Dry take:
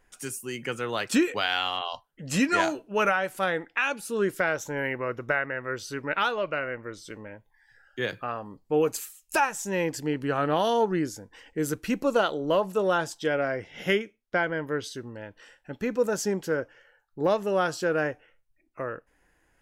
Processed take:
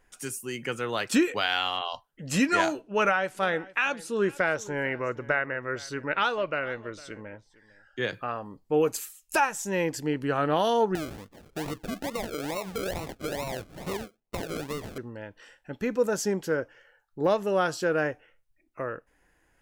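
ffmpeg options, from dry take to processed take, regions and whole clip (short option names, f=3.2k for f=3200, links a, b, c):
-filter_complex "[0:a]asettb=1/sr,asplit=3[a][b][c];[a]atrim=end=2.814[d];[b]atrim=start=2.81:end=8.14,asetpts=PTS-STARTPTS,afade=t=in:d=0.004:c=qsin,afade=t=out:st=5.326:d=0.004:c=qsin,lowpass=8.4k,aecho=1:1:455:0.0944,atrim=end_sample=235053[e];[c]atrim=start=8.136[f];[d][e]acrossfade=d=0.004:c1=hsin:c2=qsin[g];[g][f]acrossfade=d=0.004:c1=qsin:c2=hsin,asettb=1/sr,asplit=3[h][i][j];[h]atrim=end=10.954[k];[i]atrim=start=10.95:end=14.98,asetpts=PTS-STARTPTS,afade=t=in:d=0.004:c=qsin,afade=t=out:st=4.026:d=0.004:c=qsin,acrusher=samples=38:mix=1:aa=0.000001:lfo=1:lforange=22.8:lforate=2.3,acompressor=threshold=-29dB:ratio=6:attack=3.2:release=140:knee=1:detection=peak[l];[j]atrim=start=14.976[m];[k][l]acrossfade=d=0.004:c1=hsin:c2=qsin[n];[n][m]acrossfade=d=0.004:c1=qsin:c2=hsin"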